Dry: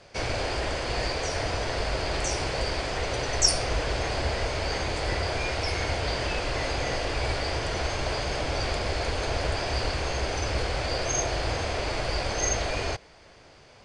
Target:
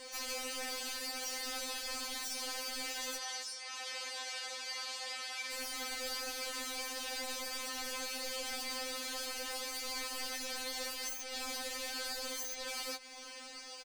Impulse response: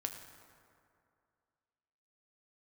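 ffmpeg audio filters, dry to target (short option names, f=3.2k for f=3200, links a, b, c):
-filter_complex "[0:a]aemphasis=mode=production:type=riaa,acompressor=threshold=-37dB:ratio=6,aeval=exprs='0.0141*(abs(mod(val(0)/0.0141+3,4)-2)-1)':c=same,afreqshift=-64,asettb=1/sr,asplit=3[a][b][c];[a]atrim=end=3.174[d];[b]atrim=start=3.17:end=5.51,asetpts=PTS-STARTPTS,afade=t=in:d=0.004:c=qsin,afade=t=out:st=2.336:d=0.004:c=qsin,highpass=670,lowpass=7.1k[e];[c]atrim=start=5.506[f];[d][e]acrossfade=d=0.004:c1=hsin:c2=qsin[g];[g][f]acrossfade=d=0.004:c1=qsin:c2=hsin,aecho=1:1:380:0.0668,afftfilt=real='re*3.46*eq(mod(b,12),0)':imag='im*3.46*eq(mod(b,12),0)':win_size=2048:overlap=0.75,volume=4dB"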